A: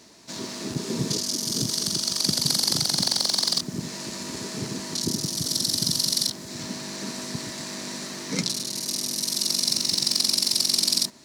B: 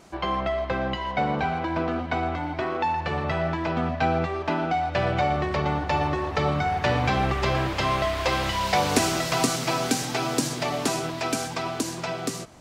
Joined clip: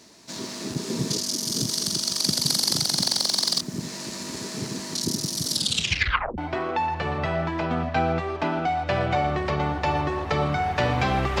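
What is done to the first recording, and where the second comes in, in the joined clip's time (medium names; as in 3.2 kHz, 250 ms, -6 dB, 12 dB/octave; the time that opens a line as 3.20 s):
A
5.51 s: tape stop 0.87 s
6.38 s: go over to B from 2.44 s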